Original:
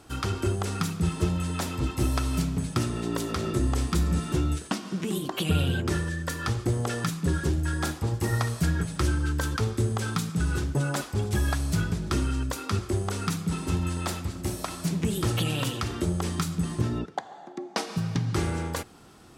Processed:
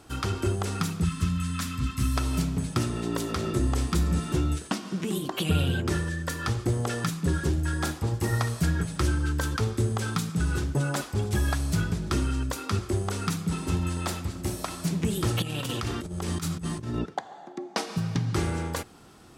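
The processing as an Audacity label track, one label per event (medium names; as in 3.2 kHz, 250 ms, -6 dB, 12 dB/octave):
1.040000	2.170000	time-frequency box 280–1000 Hz -16 dB
15.420000	17.140000	compressor with a negative ratio -30 dBFS, ratio -0.5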